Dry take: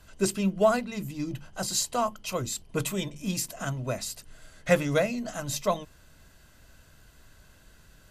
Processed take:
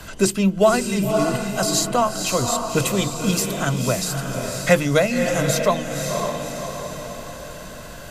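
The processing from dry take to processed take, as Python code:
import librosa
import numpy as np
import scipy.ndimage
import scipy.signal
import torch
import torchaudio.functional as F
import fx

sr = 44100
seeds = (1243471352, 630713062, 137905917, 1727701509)

y = fx.echo_diffused(x, sr, ms=547, feedback_pct=41, wet_db=-6.5)
y = fx.band_squash(y, sr, depth_pct=40)
y = y * 10.0 ** (8.5 / 20.0)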